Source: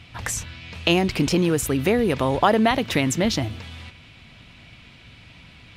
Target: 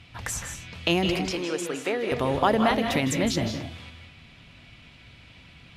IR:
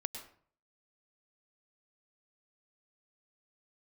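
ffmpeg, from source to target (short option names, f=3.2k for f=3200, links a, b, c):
-filter_complex "[0:a]asettb=1/sr,asplit=3[a][b][c];[a]atrim=end=1.194[d];[b]atrim=start=1.19:end=2.12,asetpts=PTS-STARTPTS,afade=t=in:d=0.004:c=qsin,afade=t=out:st=0.926:d=0.004:c=qsin,highpass=430,lowpass=6.9k[e];[c]atrim=start=2.116[f];[d][e]acrossfade=d=0.004:c1=hsin:c2=qsin[g];[g][f]acrossfade=d=0.004:c1=qsin:c2=hsin[h];[1:a]atrim=start_sample=2205,afade=t=out:st=0.22:d=0.01,atrim=end_sample=10143,asetrate=27783,aresample=44100[i];[h][i]afir=irnorm=-1:irlink=0,volume=-5.5dB"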